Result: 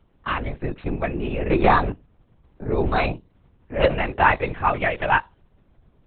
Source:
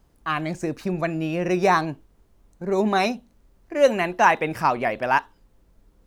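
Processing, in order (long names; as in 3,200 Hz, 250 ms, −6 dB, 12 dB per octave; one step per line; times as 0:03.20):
0:01.51–0:01.91: leveller curve on the samples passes 1
0:04.74–0:05.16: high-shelf EQ 2,500 Hz +10.5 dB
linear-prediction vocoder at 8 kHz whisper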